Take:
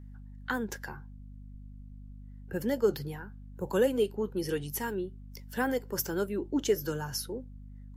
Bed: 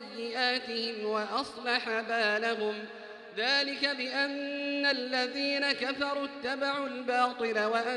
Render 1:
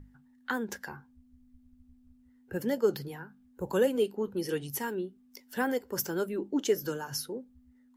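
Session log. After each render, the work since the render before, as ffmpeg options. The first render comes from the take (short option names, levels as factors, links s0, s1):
-af "bandreject=f=50:t=h:w=6,bandreject=f=100:t=h:w=6,bandreject=f=150:t=h:w=6,bandreject=f=200:t=h:w=6"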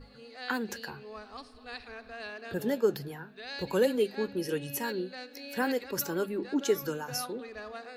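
-filter_complex "[1:a]volume=0.211[s0];[0:a][s0]amix=inputs=2:normalize=0"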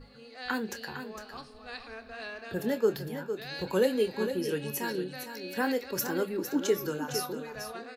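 -filter_complex "[0:a]asplit=2[s0][s1];[s1]adelay=27,volume=0.251[s2];[s0][s2]amix=inputs=2:normalize=0,aecho=1:1:457:0.355"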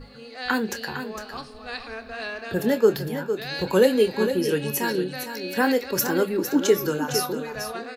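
-af "volume=2.51"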